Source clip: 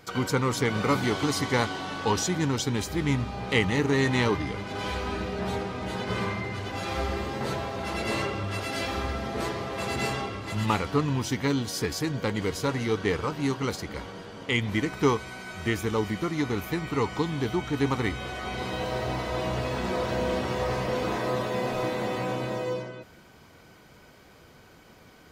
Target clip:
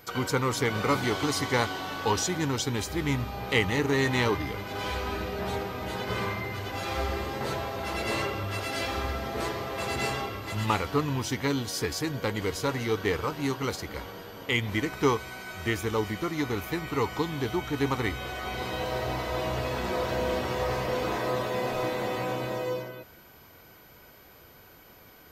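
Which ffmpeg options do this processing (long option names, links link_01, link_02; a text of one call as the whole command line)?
ffmpeg -i in.wav -af "equalizer=frequency=190:width_type=o:width=1.1:gain=-5,aeval=exprs='val(0)+0.00158*sin(2*PI*13000*n/s)':channel_layout=same" out.wav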